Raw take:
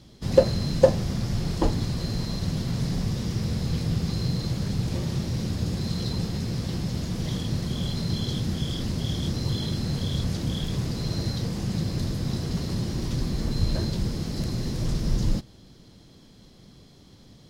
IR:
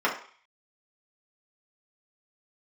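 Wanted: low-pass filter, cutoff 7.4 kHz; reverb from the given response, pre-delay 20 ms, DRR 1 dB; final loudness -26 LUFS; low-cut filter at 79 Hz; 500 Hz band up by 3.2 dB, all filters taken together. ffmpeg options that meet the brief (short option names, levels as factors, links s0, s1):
-filter_complex "[0:a]highpass=79,lowpass=7400,equalizer=f=500:t=o:g=3.5,asplit=2[s0][s1];[1:a]atrim=start_sample=2205,adelay=20[s2];[s1][s2]afir=irnorm=-1:irlink=0,volume=0.168[s3];[s0][s3]amix=inputs=2:normalize=0"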